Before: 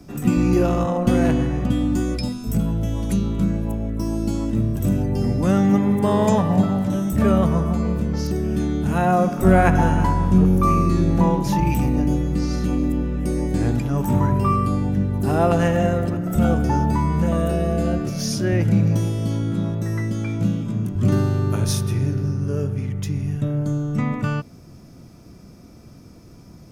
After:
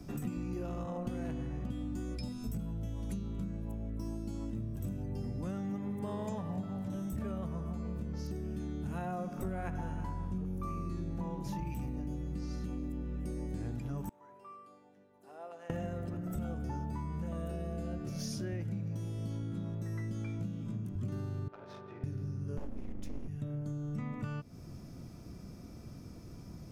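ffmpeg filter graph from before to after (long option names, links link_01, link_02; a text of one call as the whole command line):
ffmpeg -i in.wav -filter_complex "[0:a]asettb=1/sr,asplit=3[link_01][link_02][link_03];[link_01]atrim=end=14.094[link_04];[link_02]atrim=start=14.09:end=15.7,asetpts=PTS-STARTPTS,afade=type=in:duration=0.004:curve=qsin,afade=type=out:start_time=1.606:duration=0.004:curve=qsin,bandpass=frequency=540:width_type=q:width=1.2,aderivative[link_05];[link_03]atrim=start=15.696[link_06];[link_04][link_05]acrossfade=duration=0.004:curve1=hsin:curve2=qsin[link_07];[link_07][link_06]acrossfade=duration=0.004:curve1=qsin:curve2=hsin,asettb=1/sr,asplit=3[link_08][link_09][link_10];[link_08]atrim=end=21.484[link_11];[link_09]atrim=start=21.48:end=22.04,asetpts=PTS-STARTPTS,afade=type=in:duration=0.004:curve=qsin,afade=type=out:start_time=0.556:duration=0.004:curve=qsin,highpass=660,lowpass=4700,adynamicsmooth=sensitivity=1.5:basefreq=870[link_12];[link_10]atrim=start=22.036[link_13];[link_11][link_12]acrossfade=duration=0.004:curve1=hsin:curve2=qsin[link_14];[link_14][link_13]acrossfade=duration=0.004:curve1=qsin:curve2=hsin,asettb=1/sr,asplit=3[link_15][link_16][link_17];[link_15]atrim=end=22.574[link_18];[link_16]atrim=start=22.57:end=23.28,asetpts=PTS-STARTPTS,afade=type=in:duration=0.004:curve=qsin,afade=type=out:start_time=0.706:duration=0.004:curve=qsin,lowshelf=frequency=190:gain=9.5,bandreject=frequency=50:width_type=h:width=6,bandreject=frequency=100:width_type=h:width=6,bandreject=frequency=150:width_type=h:width=6,bandreject=frequency=200:width_type=h:width=6,bandreject=frequency=250:width_type=h:width=6,bandreject=frequency=300:width_type=h:width=6,bandreject=frequency=350:width_type=h:width=6,bandreject=frequency=400:width_type=h:width=6,bandreject=frequency=450:width_type=h:width=6,aeval=exprs='abs(val(0))':channel_layout=same[link_19];[link_17]atrim=start=23.276[link_20];[link_18][link_19]acrossfade=duration=0.004:curve1=hsin:curve2=qsin[link_21];[link_21][link_20]acrossfade=duration=0.004:curve1=qsin:curve2=hsin,lowshelf=frequency=160:gain=4.5,acompressor=threshold=-30dB:ratio=6,volume=-6dB" out.wav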